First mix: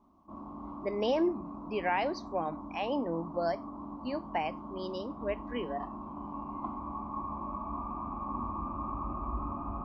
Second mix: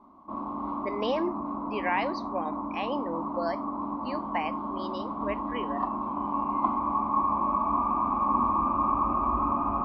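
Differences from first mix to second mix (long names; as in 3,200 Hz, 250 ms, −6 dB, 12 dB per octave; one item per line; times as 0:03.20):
speech −10.0 dB
master: add graphic EQ with 10 bands 250 Hz +7 dB, 500 Hz +7 dB, 1,000 Hz +9 dB, 2,000 Hz +11 dB, 4,000 Hz +11 dB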